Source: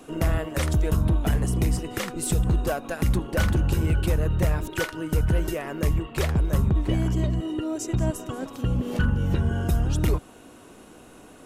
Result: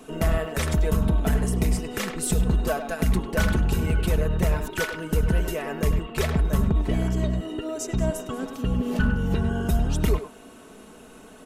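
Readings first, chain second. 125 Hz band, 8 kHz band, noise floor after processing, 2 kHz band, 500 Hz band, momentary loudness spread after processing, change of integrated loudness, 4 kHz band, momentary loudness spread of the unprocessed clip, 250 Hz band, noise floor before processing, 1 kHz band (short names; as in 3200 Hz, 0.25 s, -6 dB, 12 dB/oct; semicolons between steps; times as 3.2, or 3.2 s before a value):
-1.5 dB, +1.0 dB, -47 dBFS, +2.0 dB, +2.0 dB, 6 LU, 0.0 dB, +1.0 dB, 5 LU, +1.0 dB, -49 dBFS, +1.5 dB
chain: comb 4.6 ms, depth 53%; speakerphone echo 0.1 s, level -8 dB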